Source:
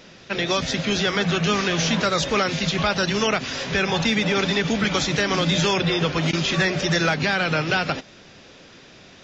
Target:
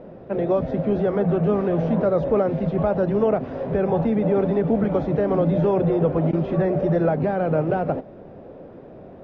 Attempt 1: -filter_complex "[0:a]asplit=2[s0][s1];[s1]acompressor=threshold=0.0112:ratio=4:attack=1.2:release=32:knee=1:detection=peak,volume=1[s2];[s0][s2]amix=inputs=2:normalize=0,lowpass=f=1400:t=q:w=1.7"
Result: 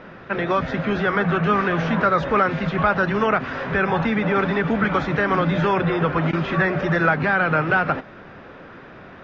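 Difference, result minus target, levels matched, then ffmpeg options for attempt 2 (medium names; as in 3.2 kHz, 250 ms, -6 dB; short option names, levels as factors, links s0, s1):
1 kHz band +7.0 dB
-filter_complex "[0:a]asplit=2[s0][s1];[s1]acompressor=threshold=0.0112:ratio=4:attack=1.2:release=32:knee=1:detection=peak,volume=1[s2];[s0][s2]amix=inputs=2:normalize=0,lowpass=f=610:t=q:w=1.7"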